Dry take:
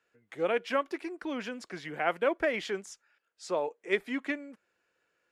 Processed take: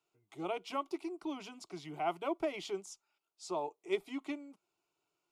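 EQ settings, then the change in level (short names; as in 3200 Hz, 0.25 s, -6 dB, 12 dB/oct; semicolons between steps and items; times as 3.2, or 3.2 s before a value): fixed phaser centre 340 Hz, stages 8; -2.0 dB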